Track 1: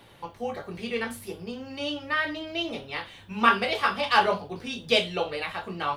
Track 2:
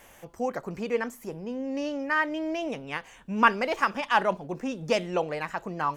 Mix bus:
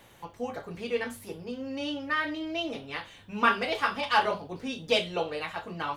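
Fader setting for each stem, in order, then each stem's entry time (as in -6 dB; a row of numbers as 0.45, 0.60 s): -4.5, -7.0 dB; 0.00, 0.00 s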